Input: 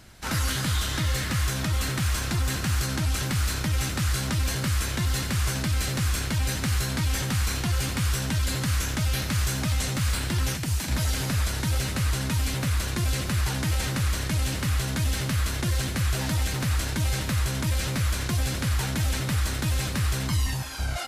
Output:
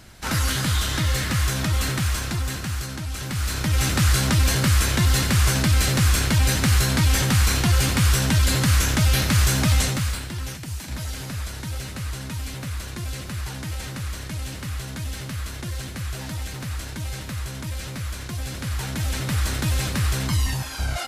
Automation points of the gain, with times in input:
1.89 s +3.5 dB
3.07 s -5 dB
3.92 s +7 dB
9.79 s +7 dB
10.29 s -5 dB
18.31 s -5 dB
19.5 s +3 dB

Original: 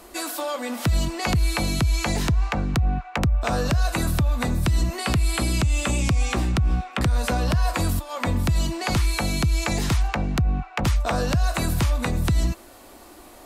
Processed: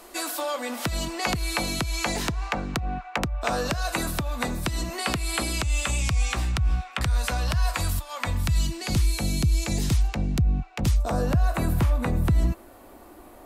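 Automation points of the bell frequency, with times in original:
bell -11.5 dB 2.4 oct
5.36 s 82 Hz
5.9 s 290 Hz
8.34 s 290 Hz
8.96 s 1200 Hz
10.86 s 1200 Hz
11.37 s 5500 Hz

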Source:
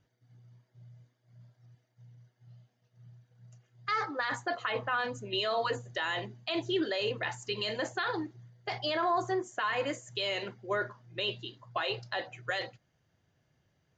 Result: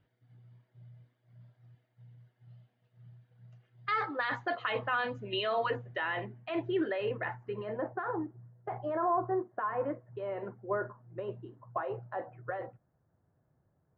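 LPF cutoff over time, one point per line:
LPF 24 dB/oct
5 s 3600 Hz
6.37 s 2200 Hz
7.06 s 2200 Hz
7.82 s 1300 Hz

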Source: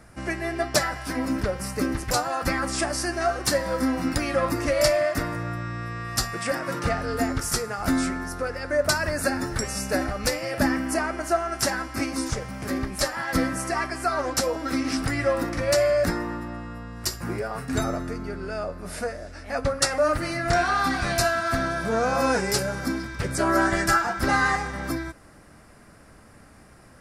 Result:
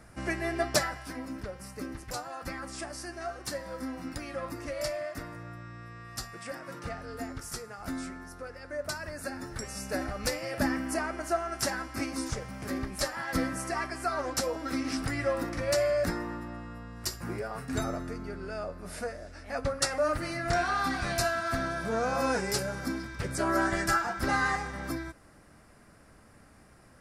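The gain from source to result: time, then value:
0.7 s -3 dB
1.27 s -13 dB
9.22 s -13 dB
10.21 s -6 dB

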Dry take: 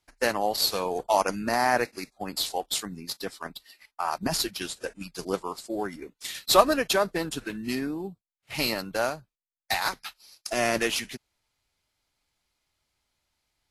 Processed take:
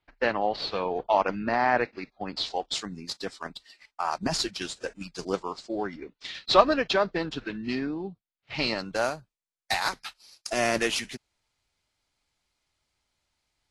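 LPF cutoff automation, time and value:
LPF 24 dB/oct
2.03 s 3600 Hz
3.02 s 7900 Hz
5.24 s 7900 Hz
5.96 s 4700 Hz
8.61 s 4700 Hz
9.05 s 9900 Hz

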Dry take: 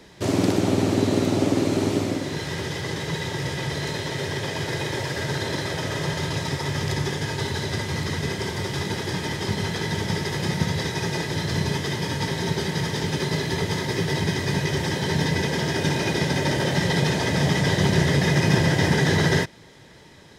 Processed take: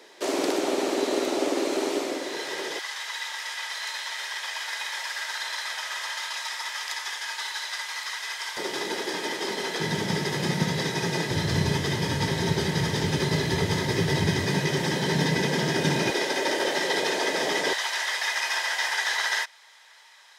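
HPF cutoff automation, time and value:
HPF 24 dB/oct
350 Hz
from 2.79 s 940 Hz
from 8.57 s 290 Hz
from 9.8 s 140 Hz
from 11.31 s 45 Hz
from 14.46 s 140 Hz
from 16.1 s 330 Hz
from 17.73 s 870 Hz

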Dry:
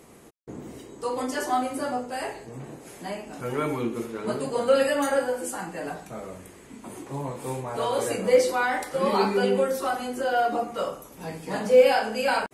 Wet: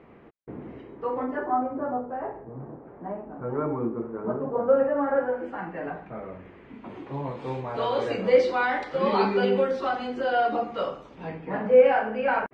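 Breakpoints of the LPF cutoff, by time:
LPF 24 dB/oct
0.91 s 2500 Hz
1.6 s 1300 Hz
4.95 s 1300 Hz
5.49 s 2300 Hz
6.22 s 2300 Hz
7.47 s 4100 Hz
11.09 s 4100 Hz
11.5 s 2200 Hz

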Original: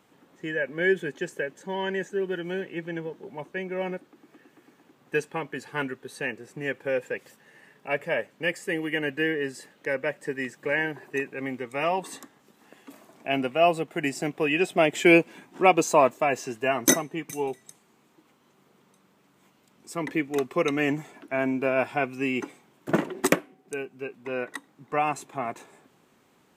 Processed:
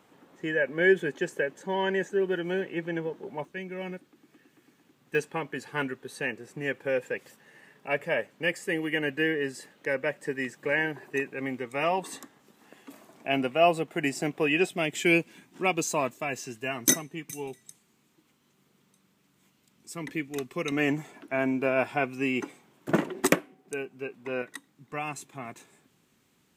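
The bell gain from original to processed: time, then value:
bell 710 Hz 2.7 oct
+2.5 dB
from 3.45 s -8.5 dB
from 5.15 s -1 dB
from 14.69 s -10.5 dB
from 20.72 s -1.5 dB
from 24.42 s -11 dB

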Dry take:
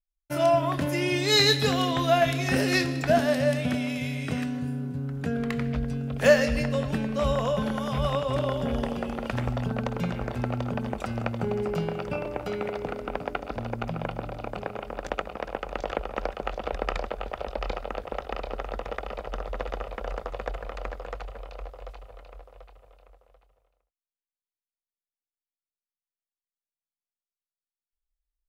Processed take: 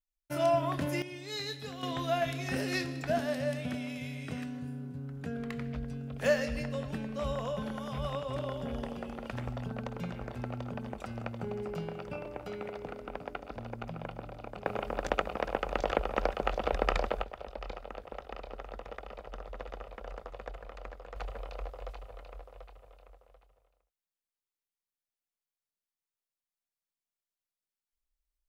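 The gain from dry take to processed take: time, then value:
-5.5 dB
from 1.02 s -18 dB
from 1.83 s -9 dB
from 14.66 s +0.5 dB
from 17.23 s -10 dB
from 21.16 s -1 dB

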